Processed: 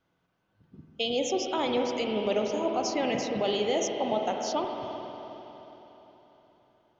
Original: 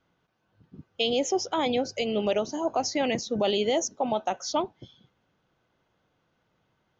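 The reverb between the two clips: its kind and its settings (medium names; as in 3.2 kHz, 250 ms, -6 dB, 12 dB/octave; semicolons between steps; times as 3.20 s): spring tank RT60 3.9 s, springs 45/51 ms, chirp 65 ms, DRR 2 dB; trim -3.5 dB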